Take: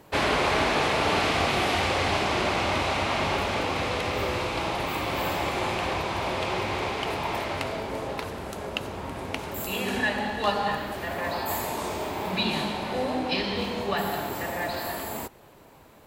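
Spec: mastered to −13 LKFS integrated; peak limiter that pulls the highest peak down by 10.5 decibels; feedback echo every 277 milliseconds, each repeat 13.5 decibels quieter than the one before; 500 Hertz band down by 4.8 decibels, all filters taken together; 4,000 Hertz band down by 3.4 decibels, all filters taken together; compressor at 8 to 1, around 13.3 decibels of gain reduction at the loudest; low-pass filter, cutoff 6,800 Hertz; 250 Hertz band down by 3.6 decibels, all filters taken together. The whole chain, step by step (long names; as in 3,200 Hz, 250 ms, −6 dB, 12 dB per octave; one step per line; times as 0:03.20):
low-pass filter 6,800 Hz
parametric band 250 Hz −3 dB
parametric band 500 Hz −5.5 dB
parametric band 4,000 Hz −4 dB
downward compressor 8 to 1, threshold −37 dBFS
brickwall limiter −31.5 dBFS
repeating echo 277 ms, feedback 21%, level −13.5 dB
level +27.5 dB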